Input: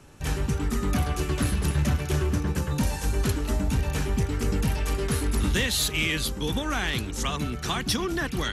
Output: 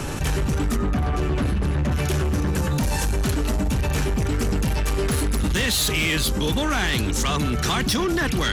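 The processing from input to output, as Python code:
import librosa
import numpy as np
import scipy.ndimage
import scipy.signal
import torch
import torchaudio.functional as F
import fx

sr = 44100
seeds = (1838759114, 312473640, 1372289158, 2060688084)

y = fx.lowpass(x, sr, hz=1600.0, slope=6, at=(0.75, 1.91), fade=0.02)
y = 10.0 ** (-24.5 / 20.0) * np.tanh(y / 10.0 ** (-24.5 / 20.0))
y = fx.env_flatten(y, sr, amount_pct=70)
y = y * 10.0 ** (5.5 / 20.0)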